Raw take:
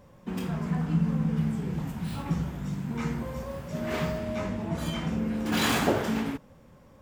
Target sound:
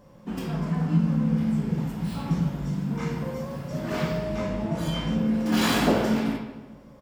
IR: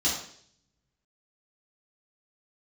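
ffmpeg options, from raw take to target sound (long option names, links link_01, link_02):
-filter_complex "[0:a]asplit=2[link_01][link_02];[link_02]adelay=149,lowpass=frequency=2600:poles=1,volume=-13dB,asplit=2[link_03][link_04];[link_04]adelay=149,lowpass=frequency=2600:poles=1,volume=0.54,asplit=2[link_05][link_06];[link_06]adelay=149,lowpass=frequency=2600:poles=1,volume=0.54,asplit=2[link_07][link_08];[link_08]adelay=149,lowpass=frequency=2600:poles=1,volume=0.54,asplit=2[link_09][link_10];[link_10]adelay=149,lowpass=frequency=2600:poles=1,volume=0.54,asplit=2[link_11][link_12];[link_12]adelay=149,lowpass=frequency=2600:poles=1,volume=0.54[link_13];[link_01][link_03][link_05][link_07][link_09][link_11][link_13]amix=inputs=7:normalize=0,asplit=2[link_14][link_15];[1:a]atrim=start_sample=2205,asetrate=32634,aresample=44100[link_16];[link_15][link_16]afir=irnorm=-1:irlink=0,volume=-15dB[link_17];[link_14][link_17]amix=inputs=2:normalize=0"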